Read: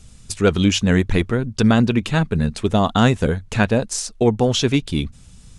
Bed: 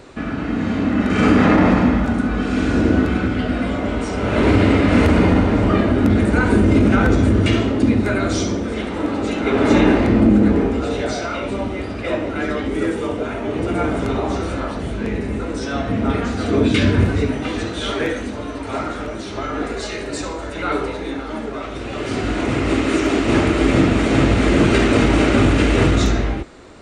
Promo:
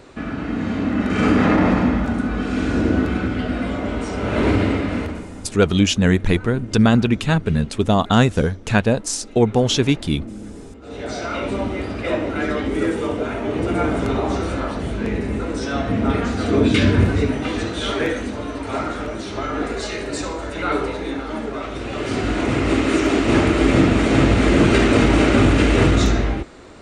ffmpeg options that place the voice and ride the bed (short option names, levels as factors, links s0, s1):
-filter_complex "[0:a]adelay=5150,volume=1.06[s0];[1:a]volume=8.91,afade=t=out:st=4.47:d=0.78:silence=0.112202,afade=t=in:st=10.81:d=0.58:silence=0.0841395[s1];[s0][s1]amix=inputs=2:normalize=0"